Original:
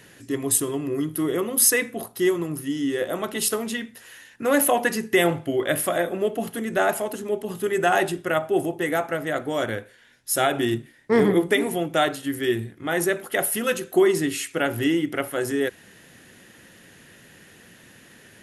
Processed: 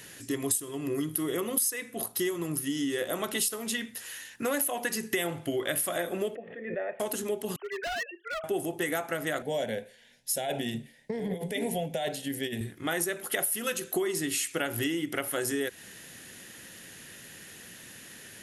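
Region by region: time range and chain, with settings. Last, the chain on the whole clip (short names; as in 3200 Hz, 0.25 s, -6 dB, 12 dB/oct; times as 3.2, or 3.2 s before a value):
6.35–7 vocal tract filter e + backwards sustainer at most 62 dB/s
7.56–8.44 sine-wave speech + HPF 1000 Hz + hard clip -30 dBFS
9.42–12.61 high shelf 3800 Hz -12 dB + negative-ratio compressor -24 dBFS + fixed phaser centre 330 Hz, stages 6
whole clip: high shelf 2900 Hz +10 dB; compressor 6:1, threshold -25 dBFS; gain -2 dB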